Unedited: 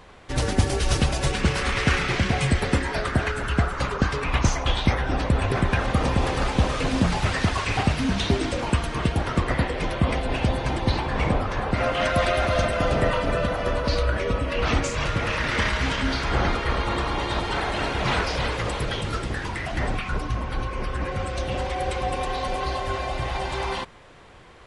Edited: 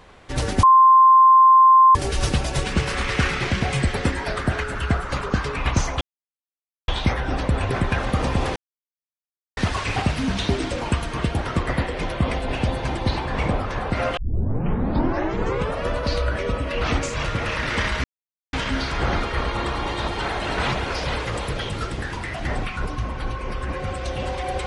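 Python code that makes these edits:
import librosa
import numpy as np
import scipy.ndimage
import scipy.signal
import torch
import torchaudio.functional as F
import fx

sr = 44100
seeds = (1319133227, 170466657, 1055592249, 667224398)

y = fx.edit(x, sr, fx.insert_tone(at_s=0.63, length_s=1.32, hz=1050.0, db=-8.5),
    fx.insert_silence(at_s=4.69, length_s=0.87),
    fx.silence(start_s=6.37, length_s=1.01),
    fx.tape_start(start_s=11.98, length_s=1.72),
    fx.insert_silence(at_s=15.85, length_s=0.49),
    fx.reverse_span(start_s=17.89, length_s=0.33), tone=tone)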